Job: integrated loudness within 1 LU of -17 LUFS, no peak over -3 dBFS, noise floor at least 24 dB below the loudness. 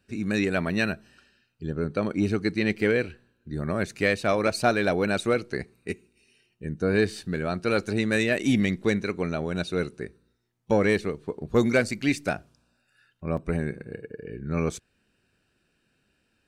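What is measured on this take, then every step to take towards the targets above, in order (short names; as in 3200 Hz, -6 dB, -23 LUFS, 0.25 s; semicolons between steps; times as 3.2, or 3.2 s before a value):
dropouts 1; longest dropout 3.6 ms; loudness -26.5 LUFS; peak -9.0 dBFS; loudness target -17.0 LUFS
-> interpolate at 13.37, 3.6 ms; gain +9.5 dB; limiter -3 dBFS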